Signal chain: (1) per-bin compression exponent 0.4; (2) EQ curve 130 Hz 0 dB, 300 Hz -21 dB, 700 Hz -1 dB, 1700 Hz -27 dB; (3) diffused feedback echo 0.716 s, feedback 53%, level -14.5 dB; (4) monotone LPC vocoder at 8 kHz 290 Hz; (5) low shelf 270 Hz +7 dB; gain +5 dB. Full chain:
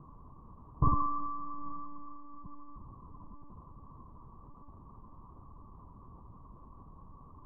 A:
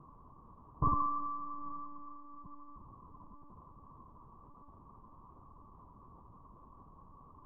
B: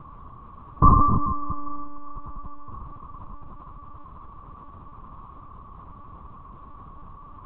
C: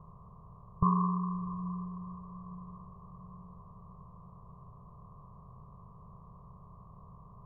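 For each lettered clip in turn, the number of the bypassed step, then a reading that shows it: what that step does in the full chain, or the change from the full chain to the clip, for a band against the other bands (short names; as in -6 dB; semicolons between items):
5, 125 Hz band -4.0 dB; 2, loudness change +14.0 LU; 4, 250 Hz band +7.0 dB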